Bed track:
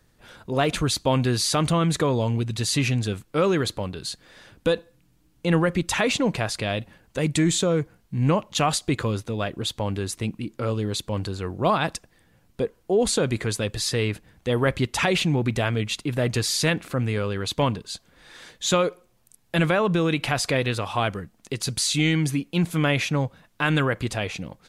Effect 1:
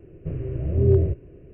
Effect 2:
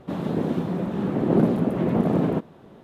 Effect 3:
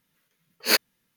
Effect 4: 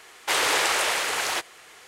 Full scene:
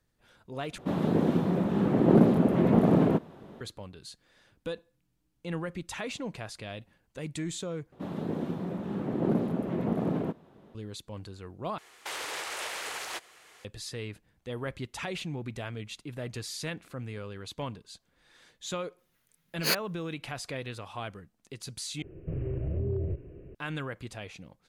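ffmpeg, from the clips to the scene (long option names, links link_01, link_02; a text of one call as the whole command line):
ffmpeg -i bed.wav -i cue0.wav -i cue1.wav -i cue2.wav -i cue3.wav -filter_complex "[2:a]asplit=2[link_01][link_02];[0:a]volume=-14dB[link_03];[4:a]alimiter=limit=-19.5dB:level=0:latency=1:release=107[link_04];[3:a]alimiter=limit=-11dB:level=0:latency=1:release=71[link_05];[1:a]acompressor=threshold=-26dB:ratio=6:attack=3.2:release=140:knee=1:detection=peak[link_06];[link_03]asplit=5[link_07][link_08][link_09][link_10][link_11];[link_07]atrim=end=0.784[link_12];[link_01]atrim=end=2.83,asetpts=PTS-STARTPTS,volume=-0.5dB[link_13];[link_08]atrim=start=3.606:end=7.924[link_14];[link_02]atrim=end=2.83,asetpts=PTS-STARTPTS,volume=-8dB[link_15];[link_09]atrim=start=10.746:end=11.784[link_16];[link_04]atrim=end=1.87,asetpts=PTS-STARTPTS,volume=-7.5dB[link_17];[link_10]atrim=start=13.646:end=22.024[link_18];[link_06]atrim=end=1.53,asetpts=PTS-STARTPTS,volume=-1.5dB[link_19];[link_11]atrim=start=23.546[link_20];[link_05]atrim=end=1.16,asetpts=PTS-STARTPTS,volume=-3.5dB,afade=type=in:duration=0.004:curve=hsin,afade=type=out:start_time=1.156:duration=0.004:curve=hsin,adelay=18980[link_21];[link_12][link_13]acrossfade=duration=0.004:curve1=hsin:curve2=hsin[link_22];[link_22][link_14]acrossfade=duration=0.004:curve1=hsin:curve2=hsin[link_23];[link_23][link_15]acrossfade=duration=0.004:curve1=hsin:curve2=hsin[link_24];[link_24][link_16]acrossfade=duration=0.004:curve1=hsin:curve2=hsin[link_25];[link_25][link_17]acrossfade=duration=0.004:curve1=hsin:curve2=hsin[link_26];[link_26][link_18]acrossfade=duration=0.004:curve1=hsin:curve2=hsin[link_27];[link_27][link_19]acrossfade=duration=0.004:curve1=hsin:curve2=hsin[link_28];[link_28][link_20]acrossfade=duration=0.004:curve1=hsin:curve2=hsin[link_29];[link_29][link_21]amix=inputs=2:normalize=0" out.wav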